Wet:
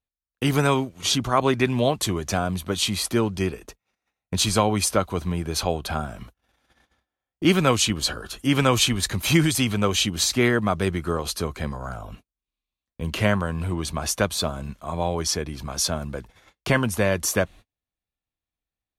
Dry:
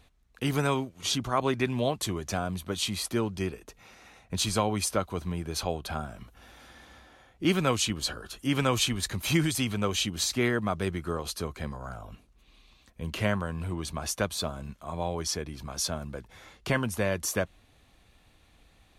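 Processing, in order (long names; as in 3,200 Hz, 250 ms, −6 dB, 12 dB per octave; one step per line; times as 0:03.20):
noise gate −48 dBFS, range −38 dB
level +6.5 dB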